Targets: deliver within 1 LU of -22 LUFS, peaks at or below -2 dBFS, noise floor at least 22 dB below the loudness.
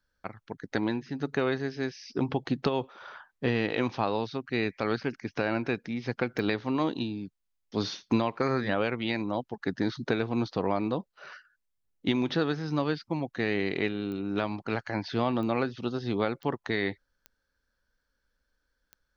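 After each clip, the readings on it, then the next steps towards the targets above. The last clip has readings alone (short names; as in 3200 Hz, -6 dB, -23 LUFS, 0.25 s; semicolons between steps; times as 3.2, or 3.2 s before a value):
clicks 6; loudness -30.5 LUFS; peak -11.0 dBFS; loudness target -22.0 LUFS
-> de-click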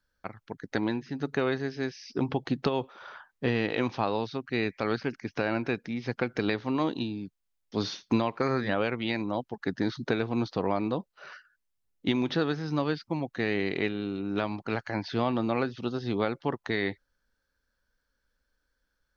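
clicks 0; loudness -30.5 LUFS; peak -11.0 dBFS; loudness target -22.0 LUFS
-> gain +8.5 dB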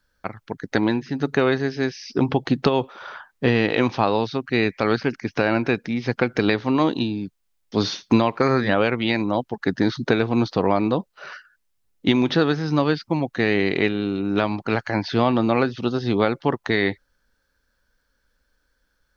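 loudness -22.0 LUFS; peak -2.5 dBFS; noise floor -71 dBFS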